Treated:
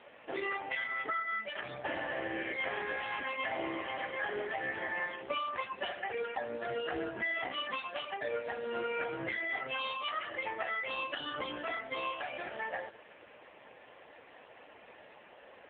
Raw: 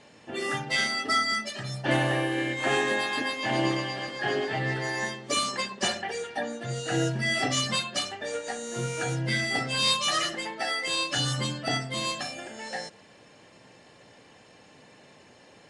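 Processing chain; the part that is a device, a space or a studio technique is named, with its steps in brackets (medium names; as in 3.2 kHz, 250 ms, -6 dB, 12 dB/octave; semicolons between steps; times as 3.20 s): voicemail (band-pass 430–2900 Hz; compression 10:1, threshold -36 dBFS, peak gain reduction 14.5 dB; trim +5.5 dB; AMR-NB 5.9 kbps 8 kHz)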